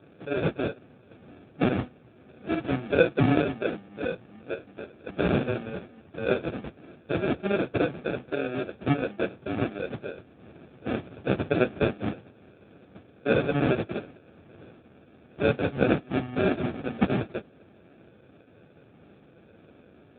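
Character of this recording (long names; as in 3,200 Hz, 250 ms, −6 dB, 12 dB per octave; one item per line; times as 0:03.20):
aliases and images of a low sample rate 1,000 Hz, jitter 0%
AMR narrowband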